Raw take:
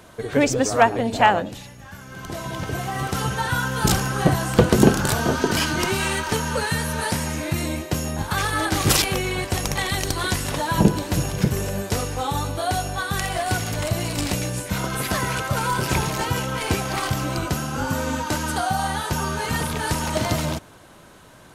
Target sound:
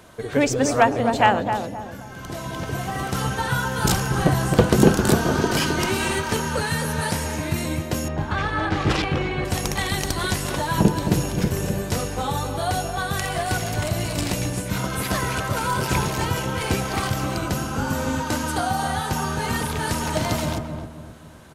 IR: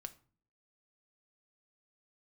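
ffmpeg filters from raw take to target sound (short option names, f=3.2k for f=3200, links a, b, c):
-filter_complex "[0:a]asettb=1/sr,asplit=3[a][b][c];[a]atrim=end=8.084[d];[b]atrim=start=8.08:end=9.45,asetpts=PTS-STARTPTS,afade=t=in:d=0.004:c=qsin,afade=t=out:st=1.366:d=0.004:c=qsin,lowpass=2.9k[e];[c]atrim=start=9.446[f];[d][e]acrossfade=d=0.004:c1=hsin:c2=qsin[g];[g][f]acrossfade=d=0.004:c1=qsin:c2=hsin,asplit=2[h][i];[i]adelay=263,lowpass=f=850:p=1,volume=-4.5dB,asplit=2[j][k];[k]adelay=263,lowpass=f=850:p=1,volume=0.44,asplit=2[l][m];[m]adelay=263,lowpass=f=850:p=1,volume=0.44,asplit=2[n][o];[o]adelay=263,lowpass=f=850:p=1,volume=0.44,asplit=2[p][q];[q]adelay=263,lowpass=f=850:p=1,volume=0.44[r];[h][j][l][n][p][r]amix=inputs=6:normalize=0,volume=-1dB"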